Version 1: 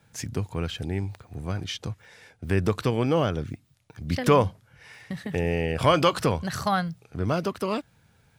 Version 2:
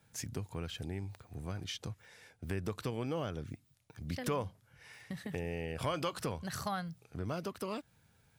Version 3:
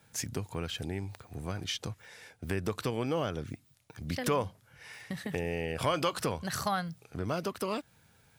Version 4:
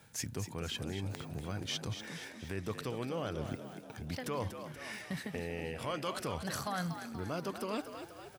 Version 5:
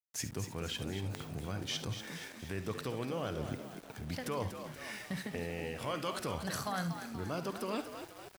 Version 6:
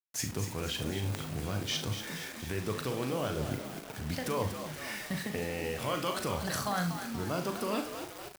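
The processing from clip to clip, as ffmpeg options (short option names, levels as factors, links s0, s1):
-af "highshelf=f=7600:g=7,acompressor=threshold=0.0316:ratio=2,volume=0.422"
-af "lowshelf=f=200:g=-5,volume=2.11"
-filter_complex "[0:a]areverse,acompressor=threshold=0.0112:ratio=6,areverse,asplit=7[s0][s1][s2][s3][s4][s5][s6];[s1]adelay=239,afreqshift=58,volume=0.355[s7];[s2]adelay=478,afreqshift=116,volume=0.191[s8];[s3]adelay=717,afreqshift=174,volume=0.104[s9];[s4]adelay=956,afreqshift=232,volume=0.0556[s10];[s5]adelay=1195,afreqshift=290,volume=0.0302[s11];[s6]adelay=1434,afreqshift=348,volume=0.0162[s12];[s0][s7][s8][s9][s10][s11][s12]amix=inputs=7:normalize=0,volume=1.58"
-af "aecho=1:1:53|69:0.168|0.188,aeval=exprs='val(0)*gte(abs(val(0)),0.00316)':c=same"
-filter_complex "[0:a]acrusher=bits=7:mix=0:aa=0.000001,asplit=2[s0][s1];[s1]adelay=39,volume=0.398[s2];[s0][s2]amix=inputs=2:normalize=0,volume=1.5"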